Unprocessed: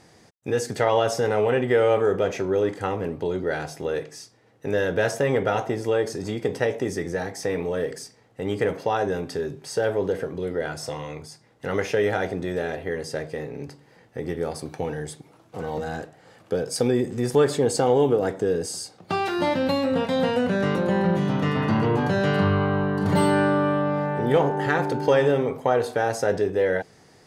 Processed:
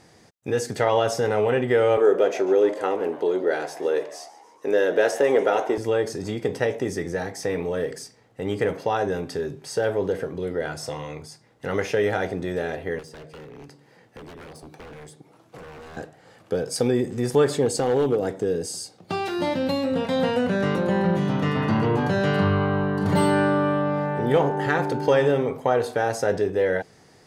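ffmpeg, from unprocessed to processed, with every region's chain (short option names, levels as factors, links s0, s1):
-filter_complex "[0:a]asettb=1/sr,asplit=3[s0][s1][s2];[s0]atrim=end=1.974[s3];[s1]atrim=start=1.97:end=5.78,asetpts=PTS-STARTPTS,afade=t=in:d=0.004:c=qsin,afade=t=out:st=3.806:d=0.004:c=qsin,highpass=f=360:t=q:w=1.6,asplit=6[s4][s5][s6][s7][s8][s9];[s5]adelay=144,afreqshift=120,volume=0.126[s10];[s6]adelay=288,afreqshift=240,volume=0.0708[s11];[s7]adelay=432,afreqshift=360,volume=0.0394[s12];[s8]adelay=576,afreqshift=480,volume=0.0221[s13];[s9]adelay=720,afreqshift=600,volume=0.0124[s14];[s4][s10][s11][s12][s13][s14]amix=inputs=6:normalize=0,atrim=end_sample=168021[s15];[s2]atrim=start=5.776[s16];[s3][s15]acrossfade=d=0.004:c1=hsin:c2=qsin[s17];[s17][s16]acrossfade=d=0.004:c1=qsin:c2=hsin,asettb=1/sr,asplit=3[s18][s19][s20];[s18]atrim=end=12.994[s21];[s19]atrim=start=12.99:end=15.97,asetpts=PTS-STARTPTS,afade=t=in:d=0.004:c=qsin,afade=t=out:st=2.976:d=0.004:c=qsin,highpass=100,aeval=exprs='0.0355*(abs(mod(val(0)/0.0355+3,4)-2)-1)':c=same,acrossover=split=240|600|1300[s22][s23][s24][s25];[s22]acompressor=threshold=0.00398:ratio=3[s26];[s23]acompressor=threshold=0.00501:ratio=3[s27];[s24]acompressor=threshold=0.002:ratio=3[s28];[s25]acompressor=threshold=0.00282:ratio=3[s29];[s26][s27][s28][s29]amix=inputs=4:normalize=0[s30];[s20]atrim=start=15.966[s31];[s21][s30]acrossfade=d=0.004:c1=hsin:c2=qsin[s32];[s32][s31]acrossfade=d=0.004:c1=qsin:c2=hsin,asettb=1/sr,asplit=3[s33][s34][s35];[s33]atrim=end=17.664[s36];[s34]atrim=start=17.66:end=20.05,asetpts=PTS-STARTPTS,afade=t=in:d=0.004:c=qsin,afade=t=out:st=2.386:d=0.004:c=qsin,highpass=f=59:p=1,equalizer=f=1300:t=o:w=1.9:g=-4.5,asoftclip=type=hard:threshold=0.168[s37];[s35]atrim=start=20.046[s38];[s36][s37]acrossfade=d=0.004:c1=hsin:c2=qsin[s39];[s39][s38]acrossfade=d=0.004:c1=qsin:c2=hsin"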